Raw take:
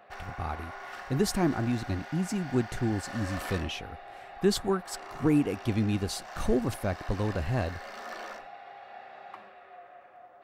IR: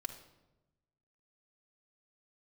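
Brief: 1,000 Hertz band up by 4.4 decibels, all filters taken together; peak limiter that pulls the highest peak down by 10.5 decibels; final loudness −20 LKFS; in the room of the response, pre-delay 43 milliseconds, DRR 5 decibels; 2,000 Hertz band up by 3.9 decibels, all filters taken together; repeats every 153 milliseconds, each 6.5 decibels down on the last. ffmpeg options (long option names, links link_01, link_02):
-filter_complex "[0:a]equalizer=frequency=1000:width_type=o:gain=5.5,equalizer=frequency=2000:width_type=o:gain=3,alimiter=limit=-21.5dB:level=0:latency=1,aecho=1:1:153|306|459|612|765|918:0.473|0.222|0.105|0.0491|0.0231|0.0109,asplit=2[link_01][link_02];[1:a]atrim=start_sample=2205,adelay=43[link_03];[link_02][link_03]afir=irnorm=-1:irlink=0,volume=-3.5dB[link_04];[link_01][link_04]amix=inputs=2:normalize=0,volume=11dB"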